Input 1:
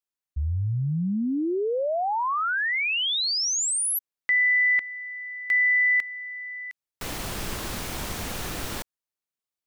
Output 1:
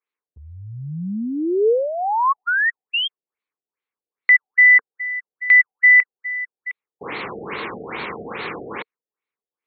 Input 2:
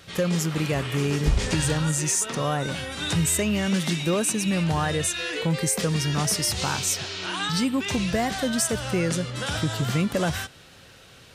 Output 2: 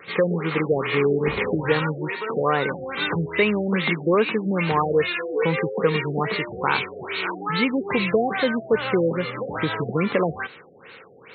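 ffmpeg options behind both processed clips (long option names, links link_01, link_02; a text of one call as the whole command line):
ffmpeg -i in.wav -af "highpass=240,equalizer=frequency=270:width_type=q:width=4:gain=-3,equalizer=frequency=450:width_type=q:width=4:gain=7,equalizer=frequency=640:width_type=q:width=4:gain=-7,equalizer=frequency=1100:width_type=q:width=4:gain=5,equalizer=frequency=2200:width_type=q:width=4:gain=9,equalizer=frequency=3200:width_type=q:width=4:gain=-3,lowpass=frequency=7300:width=0.5412,lowpass=frequency=7300:width=1.3066,afftfilt=real='re*lt(b*sr/1024,730*pow(4500/730,0.5+0.5*sin(2*PI*2.4*pts/sr)))':imag='im*lt(b*sr/1024,730*pow(4500/730,0.5+0.5*sin(2*PI*2.4*pts/sr)))':win_size=1024:overlap=0.75,volume=5.5dB" out.wav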